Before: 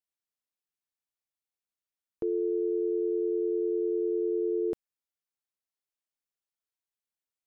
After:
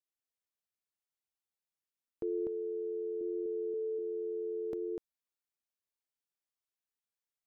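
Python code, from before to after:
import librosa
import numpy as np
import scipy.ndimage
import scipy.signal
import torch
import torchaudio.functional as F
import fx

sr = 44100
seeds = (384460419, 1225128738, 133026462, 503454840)

p1 = fx.low_shelf(x, sr, hz=140.0, db=10.5, at=(3.21, 3.74))
p2 = p1 + fx.echo_single(p1, sr, ms=247, db=-3.0, dry=0)
y = F.gain(torch.from_numpy(p2), -5.5).numpy()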